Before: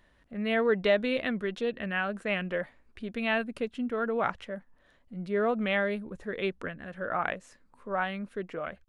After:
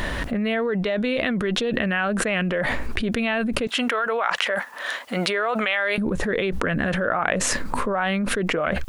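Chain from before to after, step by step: 3.67–5.98 s: high-pass 860 Hz 12 dB/octave; short-mantissa float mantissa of 8-bit; level flattener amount 100%; trim -2.5 dB

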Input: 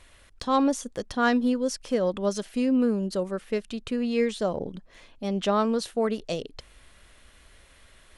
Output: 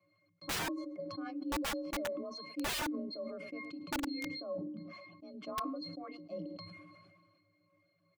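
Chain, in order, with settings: 0.65–1.50 s: compression 6:1, threshold -24 dBFS, peak gain reduction 6.5 dB; high-pass 110 Hz 24 dB/octave; 3.44–4.24 s: peaking EQ 210 Hz +8 dB 1.5 oct; pitch-class resonator C, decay 0.34 s; delay 107 ms -16 dB; FDN reverb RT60 0.76 s, low-frequency decay 1.2×, high-frequency decay 0.5×, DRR 16.5 dB; frequency shift +39 Hz; integer overflow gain 32.5 dB; 5.34–6.04 s: bass shelf 440 Hz +6.5 dB; reverb removal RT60 0.54 s; decay stretcher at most 32 dB/s; trim +2 dB

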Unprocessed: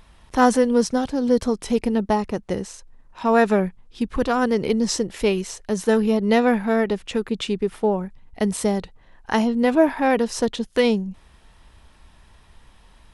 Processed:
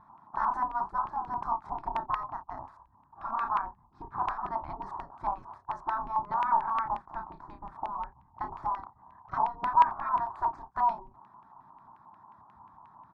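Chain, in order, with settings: spectral gate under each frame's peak -15 dB weak; resonant high shelf 1.5 kHz -13.5 dB, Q 3; static phaser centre 1.2 kHz, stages 4; early reflections 31 ms -5.5 dB, 57 ms -17 dB; LFO low-pass square 5.6 Hz 950–2600 Hz; trim -1.5 dB

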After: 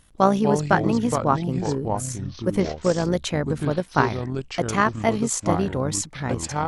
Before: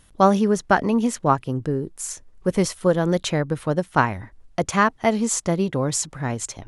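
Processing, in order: 2.60–3.03 s: CVSD coder 32 kbps; AM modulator 59 Hz, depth 30%; ever faster or slower copies 179 ms, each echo -5 st, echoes 2, each echo -6 dB

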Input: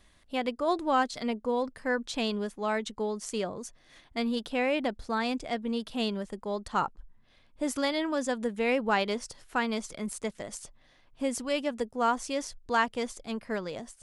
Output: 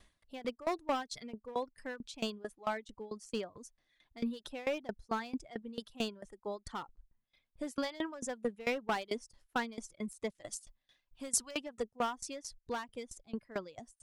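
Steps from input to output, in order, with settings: reverb removal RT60 1.9 s; hard clipper -24.5 dBFS, distortion -12 dB; 10.30–11.51 s: treble shelf 2.5 kHz +10 dB; sawtooth tremolo in dB decaying 4.5 Hz, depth 21 dB

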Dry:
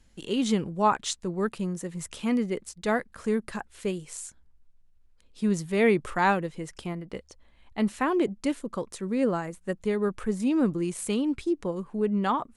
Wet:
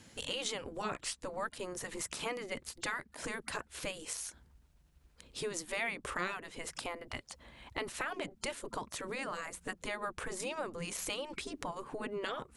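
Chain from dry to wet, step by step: spectral gate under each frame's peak -10 dB weak; compression 3:1, threshold -49 dBFS, peak gain reduction 18 dB; trim +10 dB

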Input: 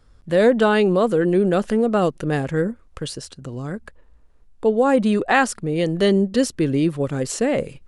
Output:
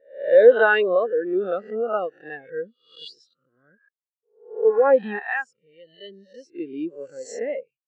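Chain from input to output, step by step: reverse spectral sustain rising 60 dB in 1.06 s; low-pass 4.6 kHz 12 dB/octave; tilt EQ +4.5 dB/octave; gate with hold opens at -35 dBFS; 5.19–6.55 s: FFT filter 110 Hz 0 dB, 250 Hz -9 dB, 640 Hz -7 dB; spectral contrast expander 2.5:1

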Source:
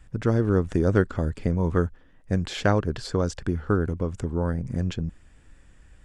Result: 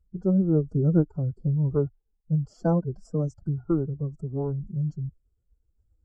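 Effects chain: Butterworth band-stop 2.3 kHz, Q 0.7; formant-preserving pitch shift +8.5 st; spectral contrast expander 1.5:1

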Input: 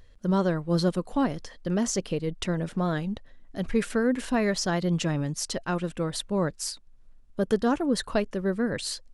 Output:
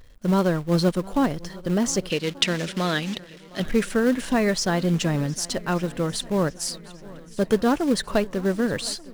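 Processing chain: in parallel at -6 dB: companded quantiser 4-bit; 2.10–3.60 s: on the sum: frequency weighting D; shuffle delay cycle 1184 ms, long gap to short 1.5:1, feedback 52%, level -21 dB

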